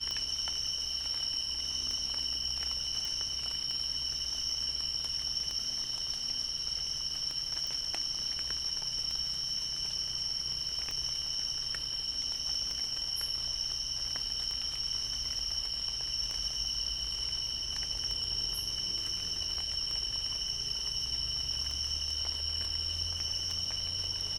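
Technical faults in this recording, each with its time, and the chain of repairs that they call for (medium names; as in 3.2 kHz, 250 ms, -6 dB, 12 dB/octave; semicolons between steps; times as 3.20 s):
tick 33 1/3 rpm -23 dBFS
3.05 s: pop
7.67 s: pop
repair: de-click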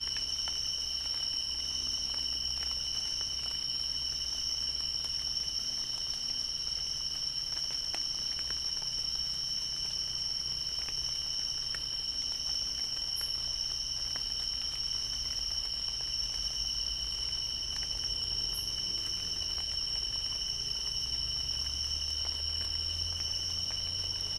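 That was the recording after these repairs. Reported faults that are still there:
nothing left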